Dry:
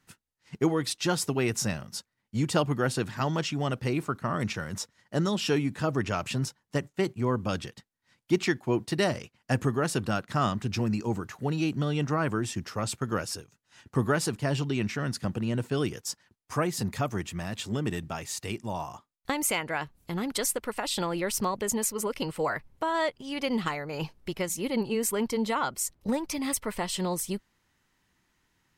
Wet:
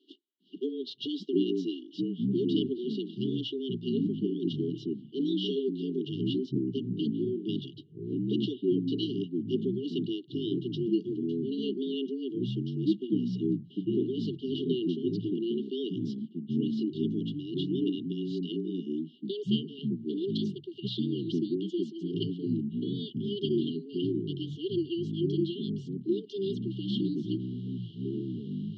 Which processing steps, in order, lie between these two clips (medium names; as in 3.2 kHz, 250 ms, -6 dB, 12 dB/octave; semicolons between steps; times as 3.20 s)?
reverse; upward compressor, threshold -34 dBFS; reverse; mistuned SSB +120 Hz 160–3600 Hz; ever faster or slower copies 401 ms, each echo -7 st, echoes 2; brick-wall FIR band-stop 430–2800 Hz